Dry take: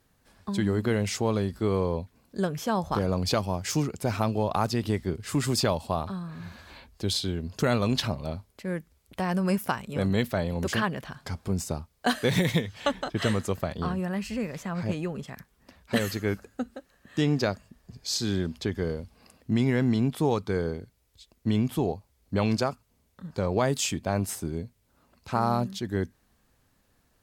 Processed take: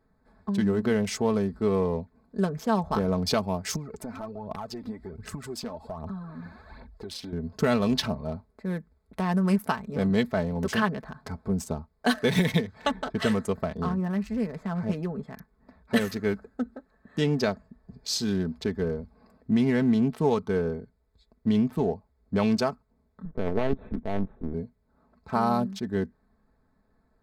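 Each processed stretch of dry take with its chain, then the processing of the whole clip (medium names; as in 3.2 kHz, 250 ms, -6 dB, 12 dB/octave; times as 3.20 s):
3.74–7.33 s: compression 5:1, threshold -34 dBFS + phaser 1.3 Hz, delay 4.3 ms, feedback 61%
23.25–24.54 s: median filter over 41 samples + LPC vocoder at 8 kHz pitch kept
whole clip: local Wiener filter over 15 samples; band-stop 7.1 kHz, Q 15; comb 4.6 ms, depth 53%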